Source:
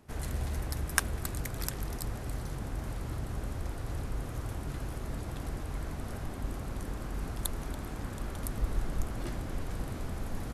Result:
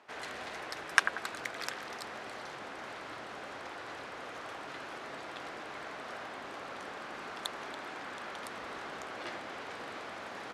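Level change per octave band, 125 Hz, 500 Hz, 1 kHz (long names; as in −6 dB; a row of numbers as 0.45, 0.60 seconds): −24.0, 0.0, +4.5 decibels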